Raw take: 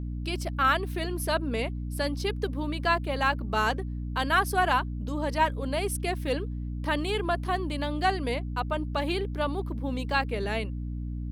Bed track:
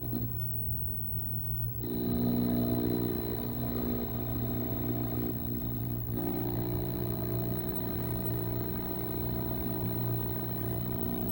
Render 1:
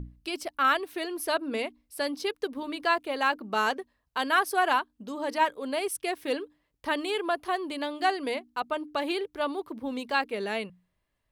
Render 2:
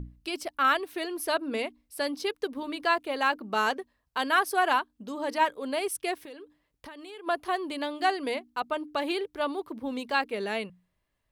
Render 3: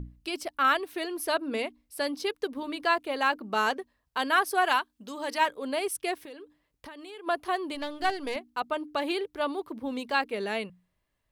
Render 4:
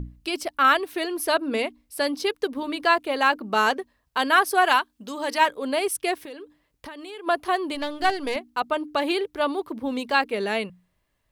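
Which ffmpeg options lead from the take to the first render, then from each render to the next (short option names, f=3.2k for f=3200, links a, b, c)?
-af "bandreject=f=60:t=h:w=6,bandreject=f=120:t=h:w=6,bandreject=f=180:t=h:w=6,bandreject=f=240:t=h:w=6,bandreject=f=300:t=h:w=6"
-filter_complex "[0:a]asplit=3[a][b][c];[a]afade=t=out:st=6.18:d=0.02[d];[b]acompressor=threshold=-42dB:ratio=6:attack=3.2:release=140:knee=1:detection=peak,afade=t=in:st=6.18:d=0.02,afade=t=out:st=7.26:d=0.02[e];[c]afade=t=in:st=7.26:d=0.02[f];[d][e][f]amix=inputs=3:normalize=0"
-filter_complex "[0:a]asettb=1/sr,asplit=3[a][b][c];[a]atrim=end=4.654[d];[b]atrim=start=4.65:end=5.46,asetpts=PTS-STARTPTS,afade=t=in:d=0.004:c=qsin,afade=t=out:st=0.806:d=0.004:c=qsin,tiltshelf=f=1.2k:g=-4.5[e];[c]atrim=start=5.456[f];[d][e]acrossfade=d=0.004:c1=hsin:c2=qsin[g];[g][f]acrossfade=d=0.004:c1=qsin:c2=hsin,asettb=1/sr,asplit=3[h][i][j];[h]atrim=end=7.754[k];[i]atrim=start=7.75:end=8.36,asetpts=PTS-STARTPTS,afade=t=in:d=0.004:c=qsin,afade=t=out:st=0.606:d=0.004:c=qsin,aeval=exprs='if(lt(val(0),0),0.447*val(0),val(0))':c=same[l];[j]atrim=start=8.356[m];[k][l]acrossfade=d=0.004:c1=hsin:c2=qsin[n];[n][m]acrossfade=d=0.004:c1=qsin:c2=hsin"
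-af "volume=5.5dB"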